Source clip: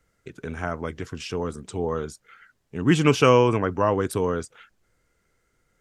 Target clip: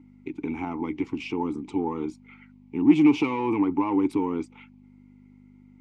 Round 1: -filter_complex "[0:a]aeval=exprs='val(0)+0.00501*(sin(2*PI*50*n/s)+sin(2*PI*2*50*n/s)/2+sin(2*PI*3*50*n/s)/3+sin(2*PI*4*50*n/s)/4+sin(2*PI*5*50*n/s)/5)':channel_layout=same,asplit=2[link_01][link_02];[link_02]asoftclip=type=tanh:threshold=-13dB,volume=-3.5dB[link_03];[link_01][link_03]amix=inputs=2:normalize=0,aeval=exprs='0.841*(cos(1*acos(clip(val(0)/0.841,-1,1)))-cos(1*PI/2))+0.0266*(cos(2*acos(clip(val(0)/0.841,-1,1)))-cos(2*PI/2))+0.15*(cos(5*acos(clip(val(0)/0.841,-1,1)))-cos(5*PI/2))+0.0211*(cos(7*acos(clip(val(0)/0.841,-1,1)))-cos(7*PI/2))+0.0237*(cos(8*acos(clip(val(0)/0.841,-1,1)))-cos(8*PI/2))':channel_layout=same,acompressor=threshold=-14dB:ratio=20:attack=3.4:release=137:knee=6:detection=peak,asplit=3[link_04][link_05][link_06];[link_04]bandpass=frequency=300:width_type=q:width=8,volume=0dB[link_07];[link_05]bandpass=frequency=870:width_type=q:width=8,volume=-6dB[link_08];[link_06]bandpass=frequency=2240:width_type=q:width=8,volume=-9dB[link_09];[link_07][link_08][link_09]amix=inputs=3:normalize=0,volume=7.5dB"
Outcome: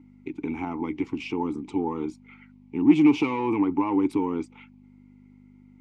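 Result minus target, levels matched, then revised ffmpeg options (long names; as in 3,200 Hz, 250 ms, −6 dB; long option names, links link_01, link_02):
soft clipping: distortion −5 dB
-filter_complex "[0:a]aeval=exprs='val(0)+0.00501*(sin(2*PI*50*n/s)+sin(2*PI*2*50*n/s)/2+sin(2*PI*3*50*n/s)/3+sin(2*PI*4*50*n/s)/4+sin(2*PI*5*50*n/s)/5)':channel_layout=same,asplit=2[link_01][link_02];[link_02]asoftclip=type=tanh:threshold=-19.5dB,volume=-3.5dB[link_03];[link_01][link_03]amix=inputs=2:normalize=0,aeval=exprs='0.841*(cos(1*acos(clip(val(0)/0.841,-1,1)))-cos(1*PI/2))+0.0266*(cos(2*acos(clip(val(0)/0.841,-1,1)))-cos(2*PI/2))+0.15*(cos(5*acos(clip(val(0)/0.841,-1,1)))-cos(5*PI/2))+0.0211*(cos(7*acos(clip(val(0)/0.841,-1,1)))-cos(7*PI/2))+0.0237*(cos(8*acos(clip(val(0)/0.841,-1,1)))-cos(8*PI/2))':channel_layout=same,acompressor=threshold=-14dB:ratio=20:attack=3.4:release=137:knee=6:detection=peak,asplit=3[link_04][link_05][link_06];[link_04]bandpass=frequency=300:width_type=q:width=8,volume=0dB[link_07];[link_05]bandpass=frequency=870:width_type=q:width=8,volume=-6dB[link_08];[link_06]bandpass=frequency=2240:width_type=q:width=8,volume=-9dB[link_09];[link_07][link_08][link_09]amix=inputs=3:normalize=0,volume=7.5dB"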